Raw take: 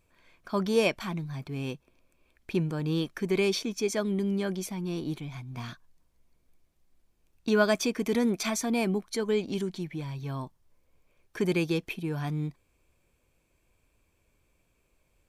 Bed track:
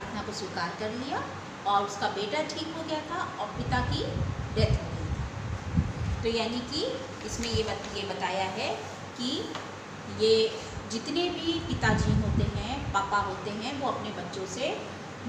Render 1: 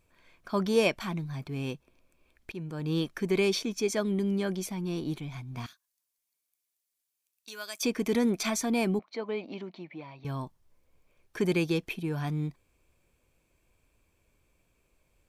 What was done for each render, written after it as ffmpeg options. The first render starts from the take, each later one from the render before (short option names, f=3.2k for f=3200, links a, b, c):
-filter_complex "[0:a]asettb=1/sr,asplit=3[a][b][c];[a]atrim=end=5.664[d];[b]atrim=start=5.66:end=7.83,asetpts=PTS-STARTPTS,afade=t=in:d=0.004:c=qsin,afade=t=out:st=2.166:d=0.004:c=qsin,aderivative[e];[c]atrim=start=7.826[f];[d][e]acrossfade=d=0.004:c1=hsin:c2=qsin[g];[g][f]acrossfade=d=0.004:c1=qsin:c2=hsin,asettb=1/sr,asplit=3[h][i][j];[h]atrim=end=8.994[k];[i]atrim=start=8.99:end=10.25,asetpts=PTS-STARTPTS,afade=t=in:d=0.004:c=qsin,afade=t=out:st=1.256:d=0.004:c=qsin,highpass=330,equalizer=f=400:t=q:w=4:g=-7,equalizer=f=630:t=q:w=4:g=4,equalizer=f=1.6k:t=q:w=4:g=-9,equalizer=f=3.3k:t=q:w=4:g=-8,lowpass=f=3.6k:w=0.5412,lowpass=f=3.6k:w=1.3066[l];[j]atrim=start=10.246[m];[k][l]acrossfade=d=0.004:c1=hsin:c2=qsin[n];[n][m]acrossfade=d=0.004:c1=qsin:c2=hsin,asplit=2[o][p];[o]atrim=end=2.52,asetpts=PTS-STARTPTS,afade=t=out:st=2.516:d=0.004:c=hsin:silence=0.149624[q];[p]atrim=start=2.52,asetpts=PTS-STARTPTS,afade=t=in:d=0.46:silence=0.149624[r];[q][r]concat=n=2:v=0:a=1"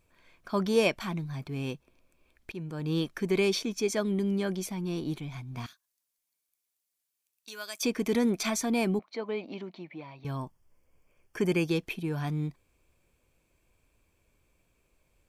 -filter_complex "[0:a]asettb=1/sr,asplit=3[a][b][c];[a]atrim=end=10.374[d];[b]atrim=start=10.37:end=11.68,asetpts=PTS-STARTPTS,afade=t=in:d=0.004:c=qsin,afade=t=out:st=1.306:d=0.004:c=qsin,asuperstop=centerf=3900:order=4:qfactor=3.6[e];[c]atrim=start=11.676[f];[d][e]acrossfade=d=0.004:c1=hsin:c2=qsin[g];[g][f]acrossfade=d=0.004:c1=qsin:c2=hsin"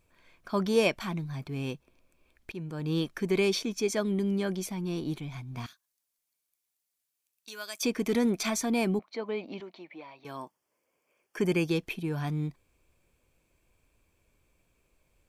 -filter_complex "[0:a]asettb=1/sr,asplit=3[a][b][c];[a]atrim=end=8.094[d];[b]atrim=start=8.09:end=8.77,asetpts=PTS-STARTPTS,afade=t=in:d=0.004:c=qsin,afade=t=out:st=0.676:d=0.004:c=qsin,aeval=exprs='clip(val(0),-1,0.0794)':c=same[e];[c]atrim=start=8.766[f];[d][e]acrossfade=d=0.004:c1=hsin:c2=qsin[g];[g][f]acrossfade=d=0.004:c1=qsin:c2=hsin,asettb=1/sr,asplit=3[h][i][j];[h]atrim=end=9.604[k];[i]atrim=start=9.6:end=11.38,asetpts=PTS-STARTPTS,afade=t=in:d=0.004:c=qsin,afade=t=out:st=1.776:d=0.004:c=qsin,highpass=340[l];[j]atrim=start=11.376[m];[k][l]acrossfade=d=0.004:c1=hsin:c2=qsin[n];[n][m]acrossfade=d=0.004:c1=qsin:c2=hsin"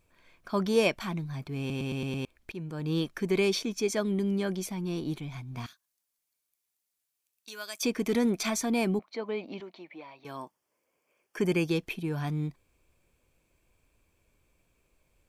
-filter_complex "[0:a]asplit=7[a][b][c][d][e][f][g];[a]atrim=end=1.702[h];[b]atrim=start=1.588:end=1.702[i];[c]atrim=start=1.588:end=1.702[j];[d]atrim=start=1.588:end=1.702[k];[e]atrim=start=1.588:end=1.702[l];[f]atrim=start=1.588:end=1.702[m];[g]atrim=start=2.248[n];[h][i]acrossfade=d=0.004:c1=hsin:c2=hsin[o];[o][j]acrossfade=d=0.004:c1=hsin:c2=hsin[p];[p][k]acrossfade=d=0.004:c1=hsin:c2=hsin[q];[q][l]acrossfade=d=0.004:c1=hsin:c2=hsin[r];[r][m]acrossfade=d=0.004:c1=hsin:c2=hsin[s];[s][n]acrossfade=d=0.004:c1=hsin:c2=hsin"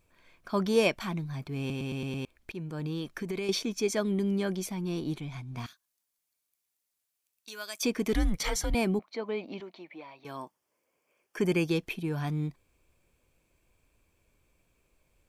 -filter_complex "[0:a]asettb=1/sr,asplit=3[a][b][c];[a]atrim=end=1.714[d];[b]atrim=start=1.71:end=3.49,asetpts=PTS-STARTPTS,afade=t=in:d=0.004:c=qsin,afade=t=out:st=1.776:d=0.004:c=qsin,acompressor=threshold=-30dB:ratio=6:attack=3.2:release=140:knee=1:detection=peak[e];[c]atrim=start=3.486[f];[d][e]acrossfade=d=0.004:c1=hsin:c2=qsin[g];[g][f]acrossfade=d=0.004:c1=qsin:c2=hsin,asettb=1/sr,asplit=3[h][i][j];[h]atrim=end=5.124[k];[i]atrim=start=5.12:end=5.58,asetpts=PTS-STARTPTS,afade=t=in:d=0.004:c=qsin,afade=t=out:st=0.456:d=0.004:c=qsin,lowpass=12k[l];[j]atrim=start=5.576[m];[k][l]acrossfade=d=0.004:c1=hsin:c2=qsin[n];[n][m]acrossfade=d=0.004:c1=qsin:c2=hsin,asettb=1/sr,asplit=3[o][p][q];[o]atrim=end=8.134[r];[p]atrim=start=8.13:end=8.75,asetpts=PTS-STARTPTS,afade=t=in:d=0.004:c=qsin,afade=t=out:st=0.616:d=0.004:c=qsin,afreqshift=-190[s];[q]atrim=start=8.746[t];[r][s]acrossfade=d=0.004:c1=hsin:c2=qsin[u];[u][t]acrossfade=d=0.004:c1=qsin:c2=hsin"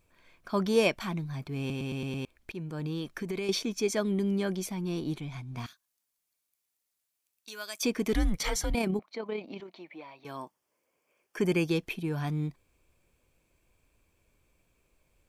-filter_complex "[0:a]asettb=1/sr,asplit=3[a][b][c];[a]atrim=end=8.724[d];[b]atrim=start=8.72:end=9.73,asetpts=PTS-STARTPTS,afade=t=in:d=0.004:c=qsin,afade=t=out:st=1.006:d=0.004:c=qsin,tremolo=f=33:d=0.4[e];[c]atrim=start=9.726[f];[d][e]acrossfade=d=0.004:c1=hsin:c2=qsin[g];[g][f]acrossfade=d=0.004:c1=qsin:c2=hsin"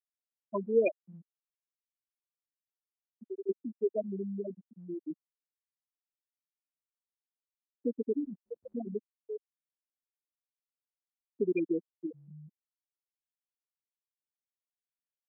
-af "afftfilt=real='re*gte(hypot(re,im),0.251)':imag='im*gte(hypot(re,im),0.251)':win_size=1024:overlap=0.75,highpass=f=250:w=0.5412,highpass=f=250:w=1.3066"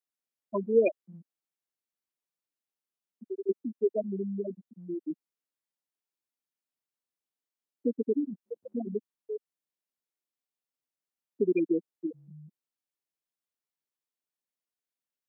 -af "highpass=200,lowshelf=f=380:g=8"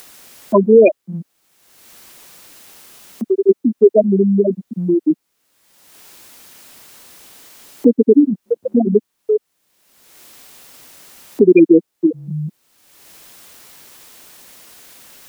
-filter_complex "[0:a]asplit=2[a][b];[b]acompressor=mode=upward:threshold=-29dB:ratio=2.5,volume=1.5dB[c];[a][c]amix=inputs=2:normalize=0,alimiter=level_in=12.5dB:limit=-1dB:release=50:level=0:latency=1"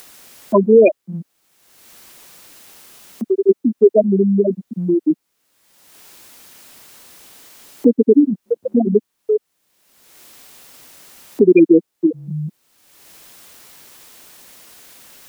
-af "volume=-1dB"